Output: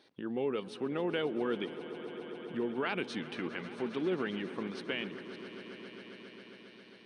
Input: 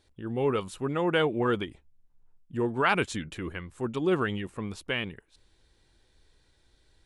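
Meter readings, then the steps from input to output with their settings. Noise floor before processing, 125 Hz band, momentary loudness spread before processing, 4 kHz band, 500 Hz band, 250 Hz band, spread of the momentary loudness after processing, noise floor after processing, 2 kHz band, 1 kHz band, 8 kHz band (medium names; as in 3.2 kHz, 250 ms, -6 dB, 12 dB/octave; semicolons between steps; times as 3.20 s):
-67 dBFS, -12.0 dB, 12 LU, -5.5 dB, -5.5 dB, -4.5 dB, 15 LU, -56 dBFS, -8.0 dB, -10.5 dB, under -10 dB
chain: high-pass 180 Hz 24 dB/octave; dynamic bell 1.1 kHz, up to -7 dB, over -42 dBFS, Q 1.3; in parallel at -1 dB: peak limiter -21.5 dBFS, peak gain reduction 9.5 dB; on the sum: compression 1.5:1, threshold -48 dBFS, peak gain reduction 10.5 dB; Savitzky-Golay filter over 15 samples; on a send: echo with a slow build-up 135 ms, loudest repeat 5, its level -17 dB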